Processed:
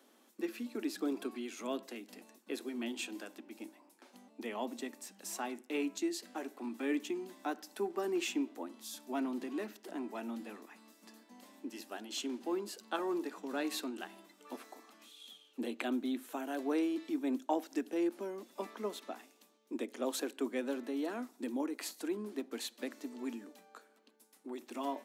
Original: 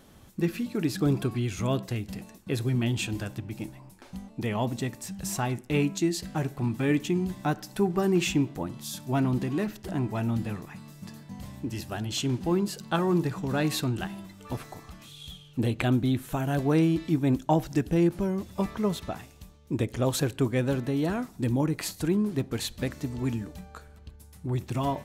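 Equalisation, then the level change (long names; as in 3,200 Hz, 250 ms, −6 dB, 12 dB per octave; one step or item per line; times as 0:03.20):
Butterworth high-pass 230 Hz 72 dB per octave
−8.5 dB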